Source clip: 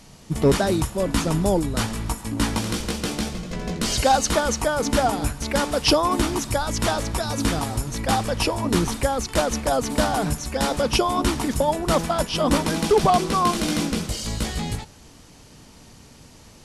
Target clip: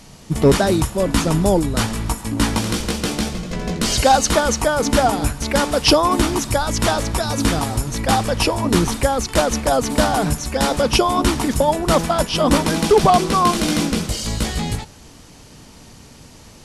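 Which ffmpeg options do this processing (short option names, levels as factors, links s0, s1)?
-af "volume=1.68"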